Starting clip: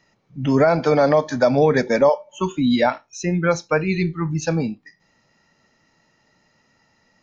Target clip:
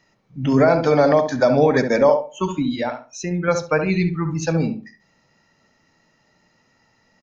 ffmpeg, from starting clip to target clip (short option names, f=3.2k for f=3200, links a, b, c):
-filter_complex "[0:a]asettb=1/sr,asplit=3[a][b][c];[a]atrim=end=2.624[d];[b]atrim=start=2.62:end=3.48,asetpts=PTS-STARTPTS,afade=t=in:d=0.004:c=qsin,afade=t=out:st=0.856:d=0.004:c=qsin,acompressor=threshold=-26dB:ratio=2[e];[c]atrim=start=3.476[f];[d][e]acrossfade=d=0.004:c1=hsin:c2=qsin[g];[g][f]acrossfade=d=0.004:c1=qsin:c2=hsin,asplit=2[h][i];[i]adelay=68,lowpass=f=1.2k:p=1,volume=-5.5dB,asplit=2[j][k];[k]adelay=68,lowpass=f=1.2k:p=1,volume=0.28,asplit=2[l][m];[m]adelay=68,lowpass=f=1.2k:p=1,volume=0.28,asplit=2[n][o];[o]adelay=68,lowpass=f=1.2k:p=1,volume=0.28[p];[h][j][l][n][p]amix=inputs=5:normalize=0"